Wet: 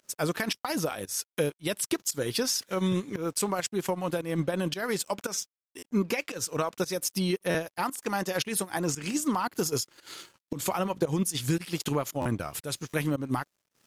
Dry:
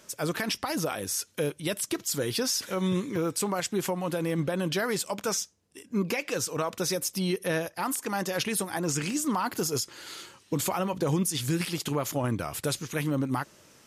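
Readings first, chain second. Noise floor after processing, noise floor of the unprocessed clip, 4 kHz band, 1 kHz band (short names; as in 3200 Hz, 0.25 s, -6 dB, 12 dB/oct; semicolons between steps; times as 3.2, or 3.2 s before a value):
under -85 dBFS, -59 dBFS, -1.0 dB, 0.0 dB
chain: transient shaper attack +3 dB, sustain -7 dB; crossover distortion -58 dBFS; pump 114 bpm, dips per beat 1, -18 dB, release 0.177 s; stuck buffer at 0.6/5.78/7.5/10.41/12.21/12.89, samples 512, times 3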